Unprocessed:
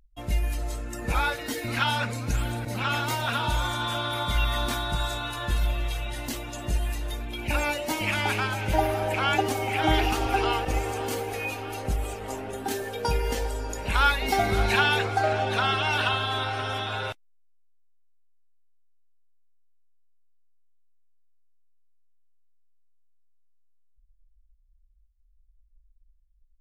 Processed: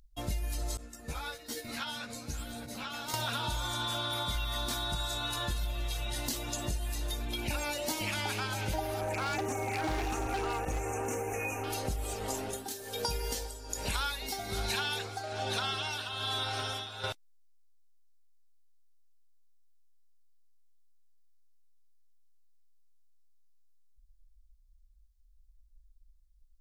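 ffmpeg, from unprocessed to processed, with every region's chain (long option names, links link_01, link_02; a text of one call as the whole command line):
ffmpeg -i in.wav -filter_complex "[0:a]asettb=1/sr,asplit=3[link_01][link_02][link_03];[link_01]atrim=end=0.774[link_04];[link_02]atrim=start=0.77:end=3.14,asetpts=PTS-STARTPTS,afade=type=in:duration=0.004:curve=qsin,afade=type=out:start_time=2.366:duration=0.004:curve=qsin,acompressor=threshold=-27dB:ratio=6:attack=3.2:release=140:knee=1:detection=peak,agate=range=-33dB:threshold=-25dB:ratio=3:release=100:detection=peak,asplit=2[link_05][link_06];[link_06]adelay=13,volume=-3dB[link_07];[link_05][link_07]amix=inputs=2:normalize=0,atrim=end_sample=104517[link_08];[link_03]atrim=start=3.136[link_09];[link_04][link_08]acrossfade=duration=0.004:curve1=hsin:curve2=qsin[link_10];[link_10][link_09]acrossfade=duration=0.004:curve1=qsin:curve2=hsin,asettb=1/sr,asplit=3[link_11][link_12][link_13];[link_11]atrim=end=9.014[link_14];[link_12]atrim=start=9.01:end=11.64,asetpts=PTS-STARTPTS,afade=type=in:duration=0.004:curve=qsin,afade=type=out:start_time=2.626:duration=0.004:curve=qsin,acrossover=split=7600[link_15][link_16];[link_16]acompressor=threshold=-53dB:ratio=4:attack=1:release=60[link_17];[link_15][link_17]amix=inputs=2:normalize=0,asuperstop=centerf=4000:order=12:qfactor=1.3,asoftclip=type=hard:threshold=-22dB[link_18];[link_13]atrim=start=11.636[link_19];[link_14][link_18]acrossfade=duration=0.004:curve1=hsin:curve2=qsin[link_20];[link_20][link_19]acrossfade=duration=0.004:curve1=qsin:curve2=hsin,asettb=1/sr,asplit=3[link_21][link_22][link_23];[link_21]atrim=end=12.344[link_24];[link_22]atrim=start=12.34:end=17.04,asetpts=PTS-STARTPTS,afade=type=in:duration=0.004:curve=qsin,afade=type=out:start_time=4.696:duration=0.004:curve=qsin,highshelf=frequency=3700:gain=6,tremolo=f=1.2:d=0.84[link_25];[link_23]atrim=start=17.036[link_26];[link_24][link_25]acrossfade=duration=0.004:curve1=hsin:curve2=qsin[link_27];[link_27][link_26]acrossfade=duration=0.004:curve1=qsin:curve2=hsin,highshelf=frequency=3300:width_type=q:width=1.5:gain=6,acompressor=threshold=-31dB:ratio=6" out.wav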